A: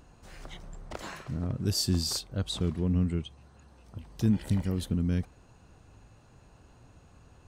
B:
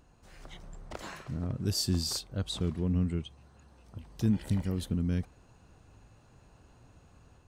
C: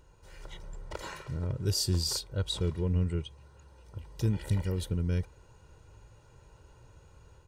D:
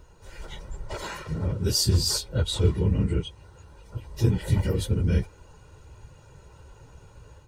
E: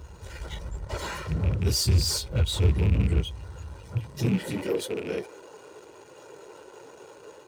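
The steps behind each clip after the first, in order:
AGC gain up to 4 dB; gain -6 dB
comb 2.1 ms, depth 67%
phase scrambler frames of 50 ms; gain +6.5 dB
rattling part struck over -23 dBFS, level -26 dBFS; power-law curve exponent 0.7; high-pass sweep 61 Hz -> 390 Hz, 3.62–4.78; gain -6 dB

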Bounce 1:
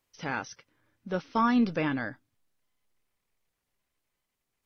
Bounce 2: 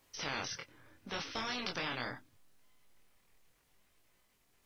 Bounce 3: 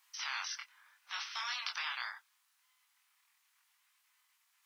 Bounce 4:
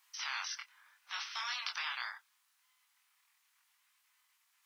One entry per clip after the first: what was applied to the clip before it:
chorus 0.74 Hz, delay 18.5 ms, depth 6 ms; spectral compressor 4:1; gain -5 dB
steep high-pass 940 Hz 36 dB/oct; gain +1 dB
ending taper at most 440 dB/s

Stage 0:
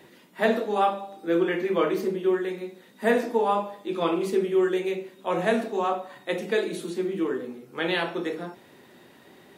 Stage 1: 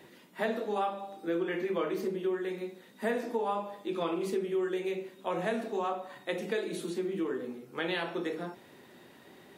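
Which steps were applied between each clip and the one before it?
compressor 2.5:1, threshold -28 dBFS, peak gain reduction 8 dB; gain -2.5 dB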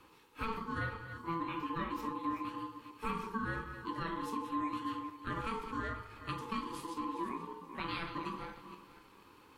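regenerating reverse delay 0.243 s, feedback 47%, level -11 dB; ring modulator 670 Hz; gain -3.5 dB

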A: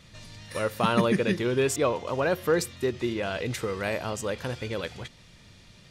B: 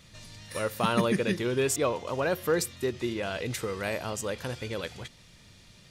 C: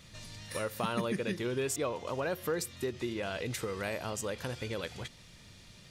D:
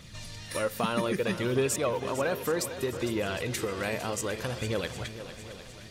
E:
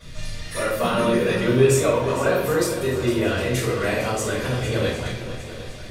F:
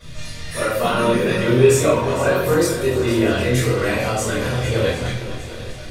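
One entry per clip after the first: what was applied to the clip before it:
high shelf 6400 Hz +7 dB; gain -2.5 dB
compressor 2:1, threshold -35 dBFS, peak gain reduction 8.5 dB
phaser 0.63 Hz, delay 4.5 ms, feedback 33%; swung echo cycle 0.757 s, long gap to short 1.5:1, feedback 44%, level -12.5 dB; gain +4 dB
reverb RT60 0.70 s, pre-delay 3 ms, DRR -12.5 dB; gain -7.5 dB
chorus voices 2, 0.79 Hz, delay 25 ms, depth 1.6 ms; gain +6 dB

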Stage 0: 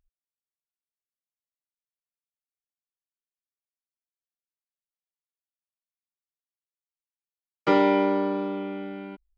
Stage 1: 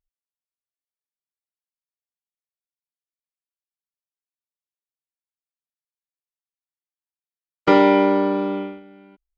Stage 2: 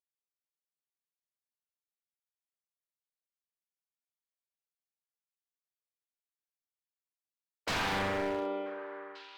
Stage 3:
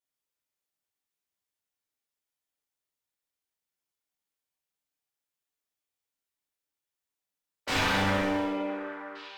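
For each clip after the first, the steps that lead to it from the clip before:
gate -31 dBFS, range -16 dB; gain +6 dB
ladder high-pass 310 Hz, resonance 20%; wavefolder -23 dBFS; delay with a stepping band-pass 0.492 s, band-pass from 490 Hz, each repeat 1.4 oct, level -9 dB; gain -4 dB
flange 0.41 Hz, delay 6.3 ms, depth 4.9 ms, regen -54%; two-slope reverb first 0.79 s, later 2.8 s, from -25 dB, DRR -6.5 dB; gain +2.5 dB

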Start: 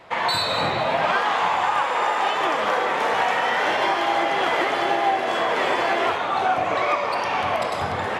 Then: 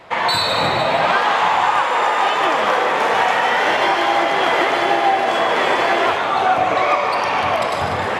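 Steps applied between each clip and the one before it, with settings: thinning echo 0.15 s, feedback 65%, level -9.5 dB; gain +4.5 dB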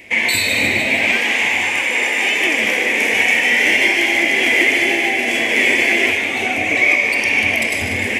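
EQ curve 100 Hz 0 dB, 160 Hz -13 dB, 230 Hz +6 dB, 1300 Hz -22 dB, 2200 Hz +12 dB, 4000 Hz -6 dB, 6000 Hz +6 dB, 12000 Hz +11 dB; gain +2.5 dB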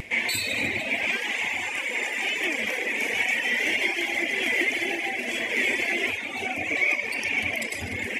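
reverb removal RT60 1.2 s; upward compressor, threshold -27 dBFS; vibrato 0.35 Hz 11 cents; gain -8 dB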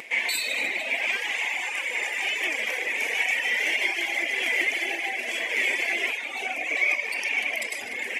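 HPF 500 Hz 12 dB/oct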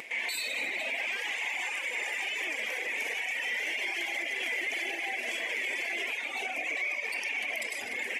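limiter -22 dBFS, peak gain reduction 9.5 dB; gain -2.5 dB

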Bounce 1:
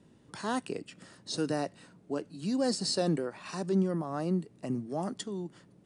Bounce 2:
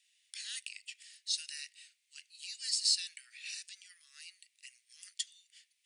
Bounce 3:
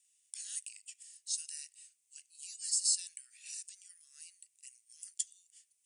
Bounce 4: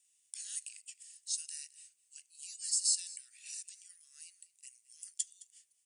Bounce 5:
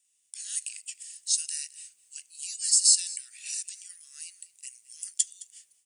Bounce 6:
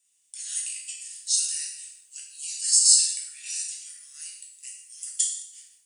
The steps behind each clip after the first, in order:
steep high-pass 2100 Hz 48 dB/oct; gain +4 dB
graphic EQ 1000/2000/4000/8000 Hz -8/-10/-12/+9 dB
echo 0.214 s -19.5 dB
AGC gain up to 10.5 dB
non-linear reverb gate 0.22 s falling, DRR -2.5 dB; gain -1 dB

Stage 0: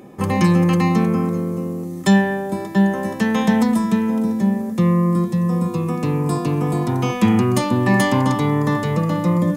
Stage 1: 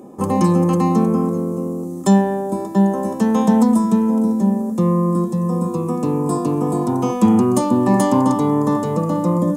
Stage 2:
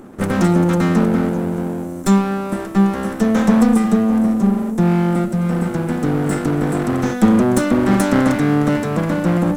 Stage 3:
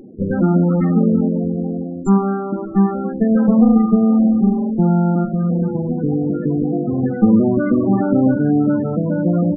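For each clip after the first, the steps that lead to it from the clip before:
graphic EQ 125/250/500/1000/2000/4000/8000 Hz -4/+7/+4/+7/-11/-4/+7 dB; gain -3 dB
minimum comb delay 0.53 ms; gain +1.5 dB
outdoor echo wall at 17 m, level -10 dB; loudest bins only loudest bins 16

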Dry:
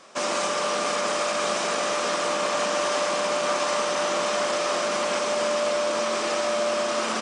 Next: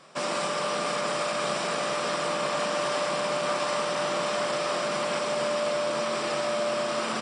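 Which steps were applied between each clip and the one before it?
bell 150 Hz +14.5 dB 0.34 oct; notch 6400 Hz, Q 5; gain -3 dB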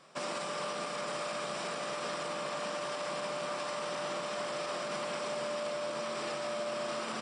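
limiter -22 dBFS, peak gain reduction 6.5 dB; gain -6 dB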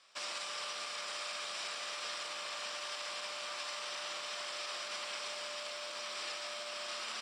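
in parallel at -10 dB: bit-crush 8-bit; on the sum: band-pass 4200 Hz, Q 0.82; gain +1 dB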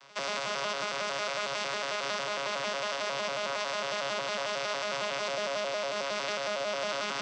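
arpeggiated vocoder bare fifth, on C#3, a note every 91 ms; in parallel at -1.5 dB: limiter -42 dBFS, peak gain reduction 11 dB; on the sum: gain +7 dB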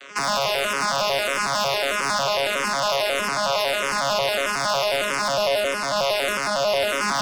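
sine folder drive 8 dB, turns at -21.5 dBFS; endless phaser -1.6 Hz; gain +5 dB

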